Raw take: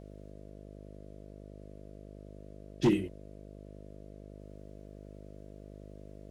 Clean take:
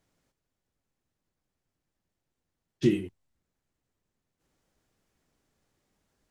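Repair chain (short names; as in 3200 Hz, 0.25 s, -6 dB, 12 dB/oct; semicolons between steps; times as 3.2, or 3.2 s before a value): clip repair -18.5 dBFS; de-hum 50.7 Hz, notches 13; expander -41 dBFS, range -21 dB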